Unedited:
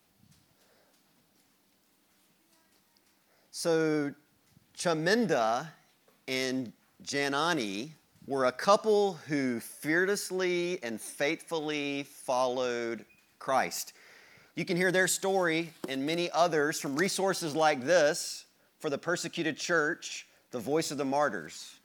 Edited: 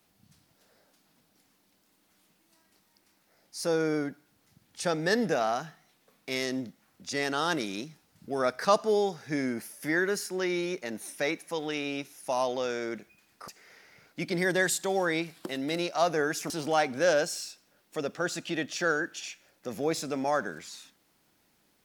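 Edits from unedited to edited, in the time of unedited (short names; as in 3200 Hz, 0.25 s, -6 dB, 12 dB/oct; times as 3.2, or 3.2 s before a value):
13.48–13.87 cut
16.89–17.38 cut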